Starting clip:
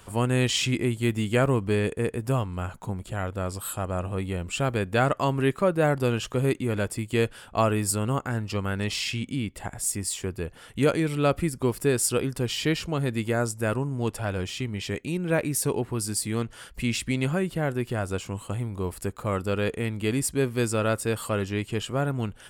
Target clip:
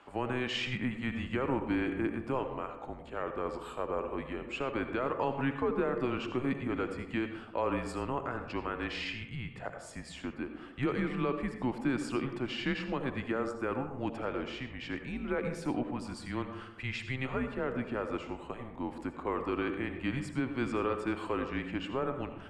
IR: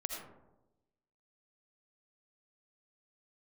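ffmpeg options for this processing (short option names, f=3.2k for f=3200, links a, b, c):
-filter_complex "[0:a]highpass=400,lowpass=2.4k,alimiter=limit=-19dB:level=0:latency=1,asplit=2[a][b];[1:a]atrim=start_sample=2205[c];[b][c]afir=irnorm=-1:irlink=0,volume=1.5dB[d];[a][d]amix=inputs=2:normalize=0,afreqshift=-130,volume=-8dB"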